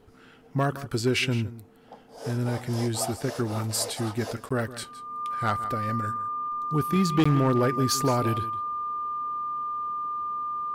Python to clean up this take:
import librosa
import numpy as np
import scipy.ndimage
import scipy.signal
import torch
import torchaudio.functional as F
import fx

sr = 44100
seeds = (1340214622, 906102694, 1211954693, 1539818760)

y = fx.fix_declip(x, sr, threshold_db=-16.0)
y = fx.notch(y, sr, hz=1200.0, q=30.0)
y = fx.fix_interpolate(y, sr, at_s=(4.49, 7.24), length_ms=15.0)
y = fx.fix_echo_inverse(y, sr, delay_ms=164, level_db=-15.5)